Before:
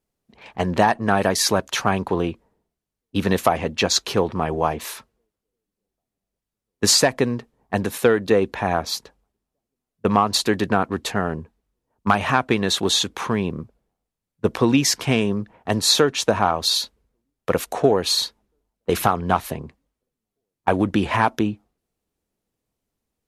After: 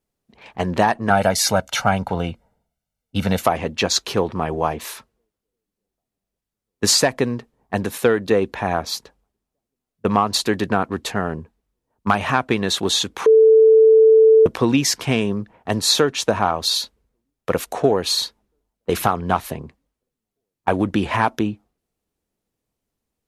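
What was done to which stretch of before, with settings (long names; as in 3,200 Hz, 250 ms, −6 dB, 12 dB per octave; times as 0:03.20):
0:01.10–0:03.42: comb filter 1.4 ms, depth 70%
0:13.26–0:14.46: beep over 442 Hz −7.5 dBFS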